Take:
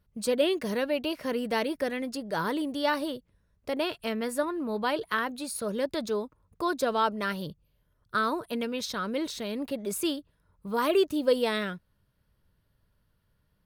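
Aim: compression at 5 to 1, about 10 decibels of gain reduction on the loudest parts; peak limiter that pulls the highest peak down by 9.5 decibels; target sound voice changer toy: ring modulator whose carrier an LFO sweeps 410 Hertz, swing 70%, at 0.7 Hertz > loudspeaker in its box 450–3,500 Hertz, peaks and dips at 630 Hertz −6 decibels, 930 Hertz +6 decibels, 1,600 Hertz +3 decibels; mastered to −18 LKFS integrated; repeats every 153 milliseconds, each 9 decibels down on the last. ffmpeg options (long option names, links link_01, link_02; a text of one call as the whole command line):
ffmpeg -i in.wav -af "acompressor=threshold=-30dB:ratio=5,alimiter=level_in=3.5dB:limit=-24dB:level=0:latency=1,volume=-3.5dB,aecho=1:1:153|306|459|612:0.355|0.124|0.0435|0.0152,aeval=exprs='val(0)*sin(2*PI*410*n/s+410*0.7/0.7*sin(2*PI*0.7*n/s))':channel_layout=same,highpass=450,equalizer=frequency=630:width_type=q:width=4:gain=-6,equalizer=frequency=930:width_type=q:width=4:gain=6,equalizer=frequency=1600:width_type=q:width=4:gain=3,lowpass=frequency=3500:width=0.5412,lowpass=frequency=3500:width=1.3066,volume=22dB" out.wav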